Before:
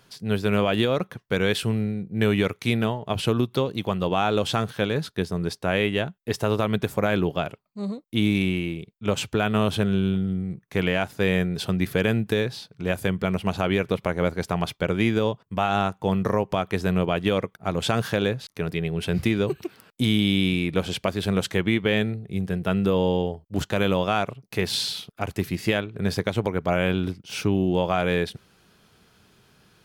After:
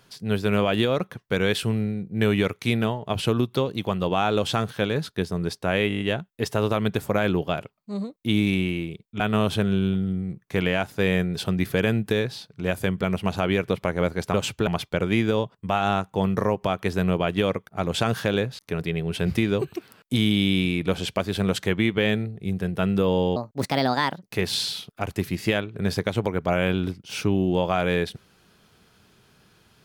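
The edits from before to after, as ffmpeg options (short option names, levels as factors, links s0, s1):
-filter_complex "[0:a]asplit=12[s0][s1][s2][s3][s4][s5][s6][s7][s8][s9][s10][s11];[s0]atrim=end=5.902[s12];[s1]atrim=start=5.878:end=5.902[s13];[s2]atrim=start=5.878:end=5.902[s14];[s3]atrim=start=5.878:end=5.902[s15];[s4]atrim=start=5.878:end=5.902[s16];[s5]atrim=start=5.878:end=5.902[s17];[s6]atrim=start=5.878:end=9.082[s18];[s7]atrim=start=9.408:end=14.552[s19];[s8]atrim=start=9.078:end=9.412[s20];[s9]atrim=start=14.548:end=23.244[s21];[s10]atrim=start=23.24:end=24.43,asetpts=PTS-STARTPTS,asetrate=60417,aresample=44100[s22];[s11]atrim=start=24.426[s23];[s12][s13]acrossfade=d=0.004:c1=hsin:c2=hsin[s24];[s24][s14]acrossfade=d=0.004:c1=hsin:c2=hsin[s25];[s25][s15]acrossfade=d=0.004:c1=hsin:c2=hsin[s26];[s26][s16]acrossfade=d=0.004:c1=hsin:c2=hsin[s27];[s27][s17]acrossfade=d=0.004:c1=hsin:c2=hsin[s28];[s28][s18]acrossfade=d=0.004:c1=hsin:c2=hsin[s29];[s29][s19]acrossfade=d=0.004:c1=hsin:c2=hsin[s30];[s30][s20]acrossfade=d=0.004:c1=hsin:c2=hsin[s31];[s31][s21]acrossfade=d=0.004:c1=hsin:c2=hsin[s32];[s32][s22]acrossfade=d=0.004:c1=hsin:c2=hsin[s33];[s33][s23]acrossfade=d=0.004:c1=hsin:c2=hsin"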